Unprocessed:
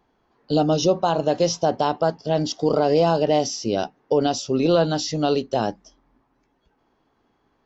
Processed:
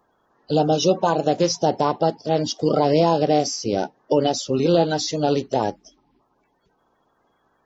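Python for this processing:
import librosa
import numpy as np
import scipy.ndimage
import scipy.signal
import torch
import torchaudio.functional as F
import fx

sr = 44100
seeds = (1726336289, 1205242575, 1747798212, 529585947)

y = fx.spec_quant(x, sr, step_db=30)
y = fx.low_shelf(y, sr, hz=150.0, db=-7.5)
y = y * 10.0 ** (2.5 / 20.0)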